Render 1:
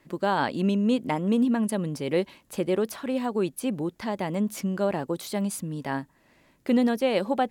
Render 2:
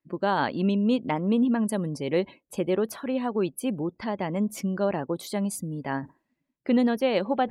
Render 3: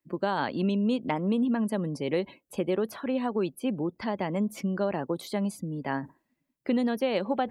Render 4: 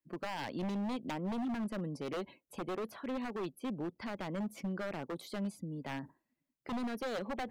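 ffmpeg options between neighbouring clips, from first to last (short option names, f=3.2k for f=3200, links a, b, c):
-af "afftdn=nr=28:nf=-47,areverse,acompressor=mode=upward:threshold=-34dB:ratio=2.5,areverse"
-filter_complex "[0:a]highshelf=f=10k:g=7.5,acrossover=split=130|4600[a][b][c];[a]acompressor=threshold=-50dB:ratio=4[d];[b]acompressor=threshold=-23dB:ratio=4[e];[c]acompressor=threshold=-50dB:ratio=4[f];[d][e][f]amix=inputs=3:normalize=0"
-filter_complex "[0:a]acrossover=split=4400[a][b];[a]aeval=exprs='0.0631*(abs(mod(val(0)/0.0631+3,4)-2)-1)':c=same[c];[b]alimiter=level_in=14dB:limit=-24dB:level=0:latency=1:release=358,volume=-14dB[d];[c][d]amix=inputs=2:normalize=0,volume=-7.5dB"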